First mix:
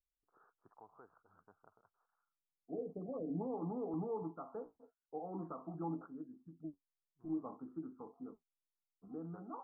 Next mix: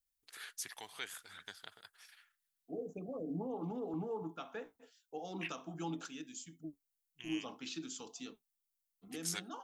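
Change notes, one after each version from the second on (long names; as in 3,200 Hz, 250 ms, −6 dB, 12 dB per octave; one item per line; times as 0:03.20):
first voice +6.5 dB
master: remove Butterworth low-pass 1,300 Hz 72 dB per octave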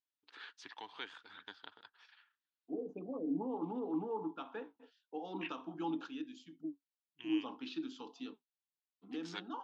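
master: add loudspeaker in its box 160–3,900 Hz, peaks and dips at 160 Hz −6 dB, 290 Hz +8 dB, 650 Hz −5 dB, 930 Hz +7 dB, 2,100 Hz −6 dB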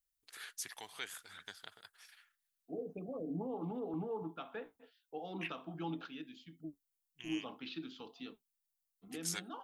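second voice: add Butterworth low-pass 4,100 Hz 36 dB per octave
master: remove loudspeaker in its box 160–3,900 Hz, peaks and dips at 160 Hz −6 dB, 290 Hz +8 dB, 650 Hz −5 dB, 930 Hz +7 dB, 2,100 Hz −6 dB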